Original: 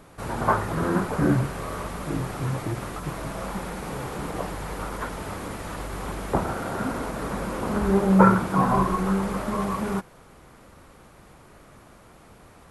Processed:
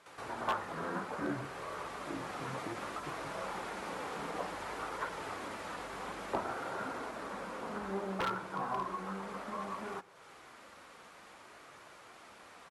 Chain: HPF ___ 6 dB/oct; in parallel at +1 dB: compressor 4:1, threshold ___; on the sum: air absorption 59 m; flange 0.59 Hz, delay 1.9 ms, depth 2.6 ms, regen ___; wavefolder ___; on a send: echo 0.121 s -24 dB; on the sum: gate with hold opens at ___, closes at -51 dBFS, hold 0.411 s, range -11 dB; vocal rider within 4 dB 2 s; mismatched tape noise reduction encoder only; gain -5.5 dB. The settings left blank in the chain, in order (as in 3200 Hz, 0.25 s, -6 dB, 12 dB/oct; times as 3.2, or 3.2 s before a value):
620 Hz, -46 dBFS, -62%, -19.5 dBFS, -44 dBFS